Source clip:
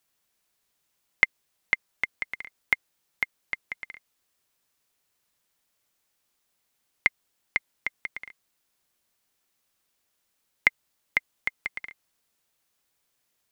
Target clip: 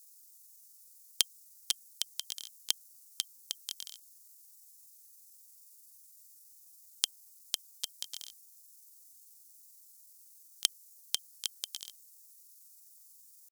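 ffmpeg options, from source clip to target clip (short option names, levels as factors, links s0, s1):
-af "aexciter=amount=13.3:drive=9.4:freq=3100,asetrate=66075,aresample=44100,atempo=0.66742,volume=0.316"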